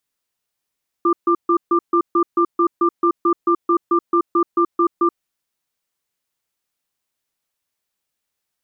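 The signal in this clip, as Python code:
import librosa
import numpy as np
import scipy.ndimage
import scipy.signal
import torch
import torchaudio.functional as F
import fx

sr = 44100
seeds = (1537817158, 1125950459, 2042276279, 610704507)

y = fx.cadence(sr, length_s=4.11, low_hz=343.0, high_hz=1190.0, on_s=0.08, off_s=0.14, level_db=-15.0)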